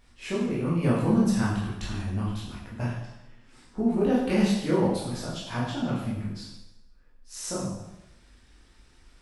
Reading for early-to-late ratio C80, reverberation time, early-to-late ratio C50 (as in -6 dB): 4.5 dB, 0.95 s, 1.5 dB